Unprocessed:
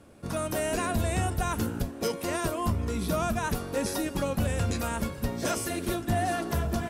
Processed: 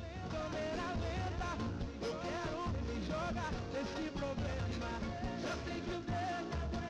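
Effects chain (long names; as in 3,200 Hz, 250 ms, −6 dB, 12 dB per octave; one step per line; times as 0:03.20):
variable-slope delta modulation 32 kbit/s
backwards echo 1,010 ms −9 dB
soft clipping −25.5 dBFS, distortion −14 dB
level −7.5 dB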